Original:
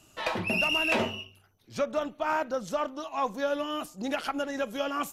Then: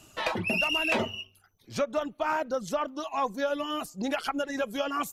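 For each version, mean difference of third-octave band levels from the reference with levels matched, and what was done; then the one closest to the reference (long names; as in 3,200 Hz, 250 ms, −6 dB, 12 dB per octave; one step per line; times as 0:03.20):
2.5 dB: reverb reduction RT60 0.59 s
in parallel at +2 dB: downward compressor, threshold −35 dBFS, peak gain reduction 11.5 dB
on the sum: level −2.5 dB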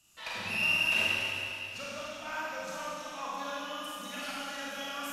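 9.5 dB: guitar amp tone stack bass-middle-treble 5-5-5
four-comb reverb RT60 2.9 s, combs from 32 ms, DRR −7.5 dB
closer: first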